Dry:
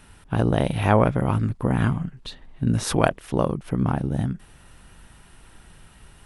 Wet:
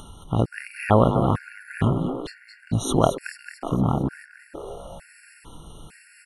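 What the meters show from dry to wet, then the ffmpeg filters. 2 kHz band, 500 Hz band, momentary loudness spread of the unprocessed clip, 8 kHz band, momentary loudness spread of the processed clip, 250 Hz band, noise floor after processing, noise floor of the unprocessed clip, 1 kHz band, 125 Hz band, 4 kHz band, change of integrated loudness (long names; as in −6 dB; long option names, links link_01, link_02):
−2.5 dB, +0.5 dB, 10 LU, −0.5 dB, 20 LU, −1.0 dB, −53 dBFS, −51 dBFS, +0.5 dB, −1.5 dB, −1.5 dB, 0.0 dB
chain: -filter_complex "[0:a]acompressor=mode=upward:threshold=-35dB:ratio=2.5,asplit=7[link_01][link_02][link_03][link_04][link_05][link_06][link_07];[link_02]adelay=222,afreqshift=140,volume=-9.5dB[link_08];[link_03]adelay=444,afreqshift=280,volume=-14.9dB[link_09];[link_04]adelay=666,afreqshift=420,volume=-20.2dB[link_10];[link_05]adelay=888,afreqshift=560,volume=-25.6dB[link_11];[link_06]adelay=1110,afreqshift=700,volume=-30.9dB[link_12];[link_07]adelay=1332,afreqshift=840,volume=-36.3dB[link_13];[link_01][link_08][link_09][link_10][link_11][link_12][link_13]amix=inputs=7:normalize=0,afftfilt=real='re*gt(sin(2*PI*1.1*pts/sr)*(1-2*mod(floor(b*sr/1024/1400),2)),0)':imag='im*gt(sin(2*PI*1.1*pts/sr)*(1-2*mod(floor(b*sr/1024/1400),2)),0)':win_size=1024:overlap=0.75,volume=1dB"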